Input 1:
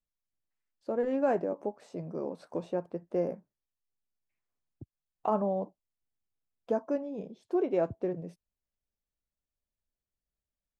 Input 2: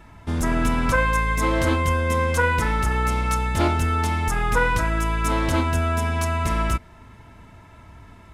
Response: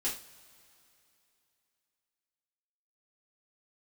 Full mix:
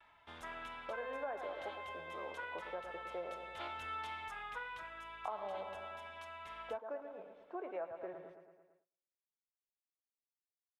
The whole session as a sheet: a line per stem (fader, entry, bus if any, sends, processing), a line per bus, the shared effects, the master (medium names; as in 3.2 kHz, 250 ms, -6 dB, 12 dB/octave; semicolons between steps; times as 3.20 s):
-4.5 dB, 0.00 s, no send, echo send -9.5 dB, peaking EQ 1.4 kHz +5.5 dB 1.9 oct; treble shelf 3.7 kHz -11.5 dB
-12.5 dB, 0.00 s, no send, no echo send, peaking EQ 3.4 kHz +10 dB 0.67 oct; auto duck -9 dB, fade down 0.85 s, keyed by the first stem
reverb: none
echo: feedback delay 111 ms, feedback 60%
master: gate with hold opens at -53 dBFS; three-band isolator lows -22 dB, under 550 Hz, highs -15 dB, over 3.1 kHz; compression 4:1, threshold -39 dBFS, peak gain reduction 10 dB